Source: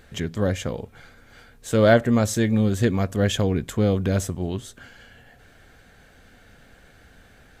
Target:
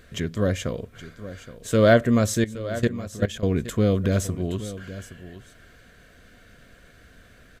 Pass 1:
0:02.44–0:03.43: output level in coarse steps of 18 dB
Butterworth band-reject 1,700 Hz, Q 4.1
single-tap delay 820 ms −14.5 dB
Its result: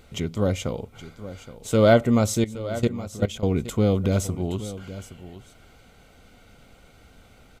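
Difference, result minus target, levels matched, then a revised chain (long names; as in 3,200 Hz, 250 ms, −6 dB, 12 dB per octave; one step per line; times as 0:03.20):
2,000 Hz band −4.0 dB
0:02.44–0:03.43: output level in coarse steps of 18 dB
Butterworth band-reject 830 Hz, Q 4.1
single-tap delay 820 ms −14.5 dB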